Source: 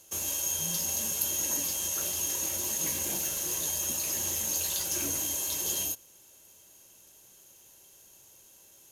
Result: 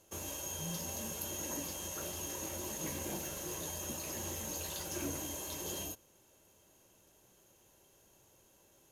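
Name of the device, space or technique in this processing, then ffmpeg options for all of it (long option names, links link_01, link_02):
through cloth: -af "highshelf=frequency=2300:gain=-13"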